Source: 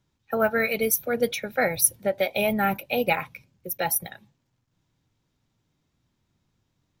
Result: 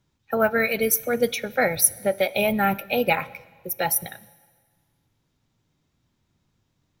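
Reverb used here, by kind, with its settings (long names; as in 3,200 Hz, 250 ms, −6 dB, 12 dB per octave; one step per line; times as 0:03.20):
dense smooth reverb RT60 1.6 s, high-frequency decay 0.95×, DRR 19.5 dB
level +2 dB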